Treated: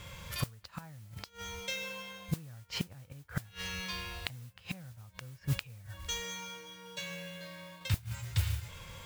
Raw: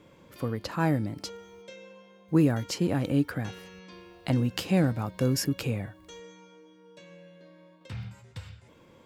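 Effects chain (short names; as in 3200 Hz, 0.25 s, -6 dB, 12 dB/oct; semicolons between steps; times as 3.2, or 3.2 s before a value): harmonic-percussive split harmonic +6 dB; low shelf 170 Hz +12 dB; treble ducked by the level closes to 1900 Hz, closed at -15 dBFS; passive tone stack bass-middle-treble 10-0-10; in parallel at +0.5 dB: compressor 5:1, threshold -49 dBFS, peak gain reduction 20.5 dB; on the sum: flipped gate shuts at -26 dBFS, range -27 dB; modulation noise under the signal 15 dB; gain +6.5 dB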